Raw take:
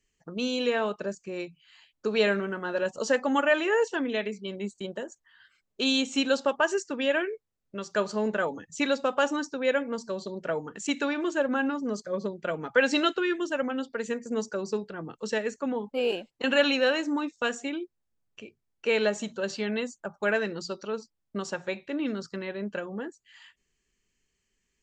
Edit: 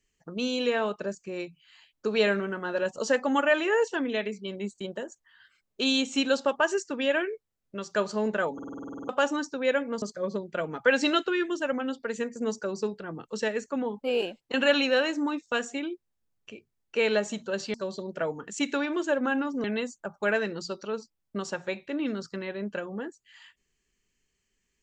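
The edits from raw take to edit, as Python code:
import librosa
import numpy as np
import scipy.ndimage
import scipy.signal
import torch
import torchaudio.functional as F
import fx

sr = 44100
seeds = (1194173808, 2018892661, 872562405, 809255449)

y = fx.edit(x, sr, fx.stutter_over(start_s=8.54, slice_s=0.05, count=11),
    fx.move(start_s=10.02, length_s=1.9, to_s=19.64), tone=tone)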